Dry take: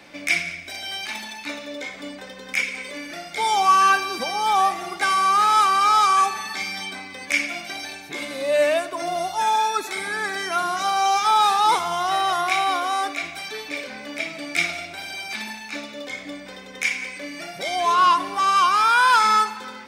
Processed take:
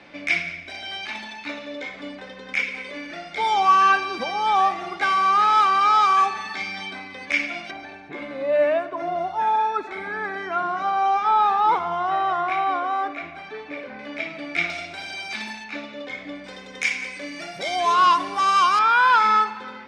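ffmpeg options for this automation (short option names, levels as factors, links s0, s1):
-af "asetnsamples=n=441:p=0,asendcmd='7.71 lowpass f 1700;13.99 lowpass f 2900;14.7 lowpass f 6000;15.64 lowpass f 3200;16.44 lowpass f 7300;18.79 lowpass f 3000',lowpass=3700"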